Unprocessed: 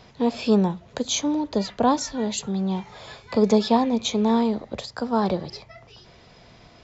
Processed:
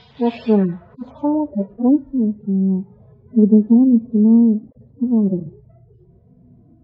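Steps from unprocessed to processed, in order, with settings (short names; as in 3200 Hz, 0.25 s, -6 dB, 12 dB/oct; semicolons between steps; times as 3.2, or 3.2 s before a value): median-filter separation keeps harmonic; low-pass sweep 3500 Hz -> 280 Hz, 0.19–2.04; gain +4 dB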